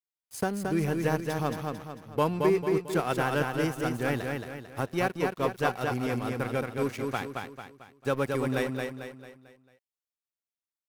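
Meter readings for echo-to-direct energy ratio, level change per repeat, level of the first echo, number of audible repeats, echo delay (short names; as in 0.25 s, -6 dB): -3.0 dB, -7.5 dB, -4.0 dB, 5, 0.223 s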